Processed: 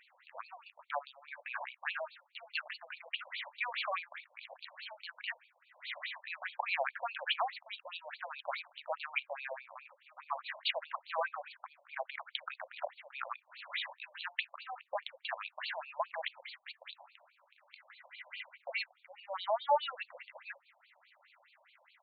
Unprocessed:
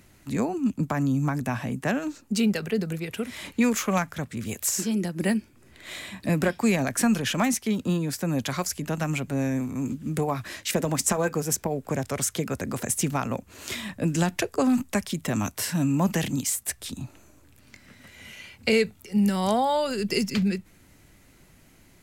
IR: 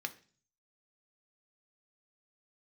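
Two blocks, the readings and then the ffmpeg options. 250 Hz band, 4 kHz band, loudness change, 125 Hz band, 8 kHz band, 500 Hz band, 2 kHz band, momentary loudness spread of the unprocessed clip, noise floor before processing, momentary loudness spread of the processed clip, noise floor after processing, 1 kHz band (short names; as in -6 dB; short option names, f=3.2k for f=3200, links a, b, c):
under -40 dB, -7.0 dB, -13.5 dB, under -40 dB, under -40 dB, -13.5 dB, -6.0 dB, 10 LU, -56 dBFS, 15 LU, -73 dBFS, -7.0 dB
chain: -af "alimiter=limit=-19dB:level=0:latency=1:release=75,afftfilt=real='re*between(b*sr/1024,720*pow(3300/720,0.5+0.5*sin(2*PI*4.8*pts/sr))/1.41,720*pow(3300/720,0.5+0.5*sin(2*PI*4.8*pts/sr))*1.41)':imag='im*between(b*sr/1024,720*pow(3300/720,0.5+0.5*sin(2*PI*4.8*pts/sr))/1.41,720*pow(3300/720,0.5+0.5*sin(2*PI*4.8*pts/sr))*1.41)':win_size=1024:overlap=0.75,volume=2dB"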